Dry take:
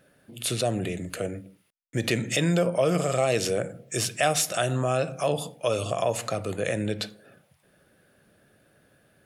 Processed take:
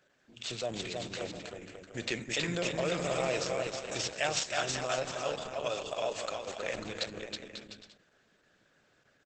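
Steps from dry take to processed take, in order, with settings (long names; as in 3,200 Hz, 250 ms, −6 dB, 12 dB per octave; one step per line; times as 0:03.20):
running median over 5 samples
0:04.43–0:06.62: high-pass filter 100 Hz → 240 Hz 6 dB per octave
spectral tilt +2.5 dB per octave
bouncing-ball delay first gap 320 ms, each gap 0.7×, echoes 5
level −6.5 dB
Opus 10 kbit/s 48,000 Hz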